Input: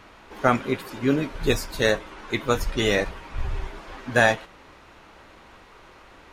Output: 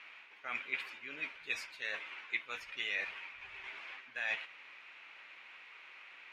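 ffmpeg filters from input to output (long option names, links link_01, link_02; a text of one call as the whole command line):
ffmpeg -i in.wav -af "areverse,acompressor=threshold=-28dB:ratio=10,areverse,bandpass=frequency=2400:width_type=q:width=3.8:csg=0,volume=5.5dB" out.wav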